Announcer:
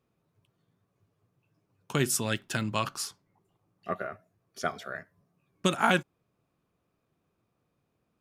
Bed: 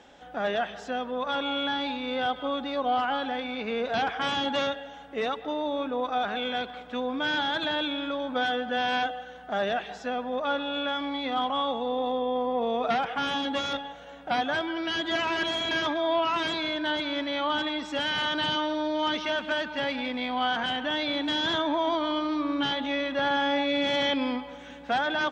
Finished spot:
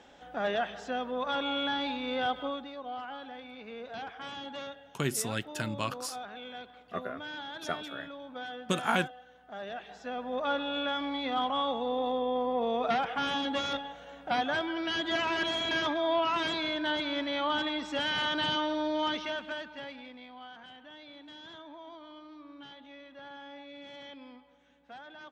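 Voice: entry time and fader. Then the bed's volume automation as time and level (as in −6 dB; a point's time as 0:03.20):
3.05 s, −4.0 dB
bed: 0:02.41 −2.5 dB
0:02.76 −13.5 dB
0:09.60 −13.5 dB
0:10.42 −2.5 dB
0:18.99 −2.5 dB
0:20.49 −21.5 dB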